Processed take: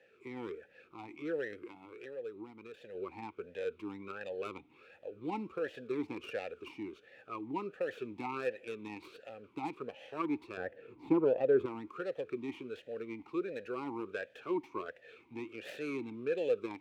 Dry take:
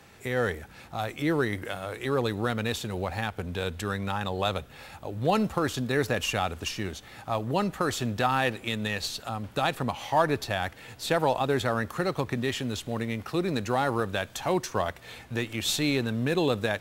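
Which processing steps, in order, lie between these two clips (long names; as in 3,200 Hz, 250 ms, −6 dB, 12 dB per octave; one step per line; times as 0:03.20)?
stylus tracing distortion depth 0.38 ms
0:01.62–0:02.95: downward compressor 12 to 1, threshold −31 dBFS, peak gain reduction 11 dB
0:10.57–0:11.66: tilt shelving filter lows +9.5 dB, about 1,400 Hz
formant filter swept between two vowels e-u 1.4 Hz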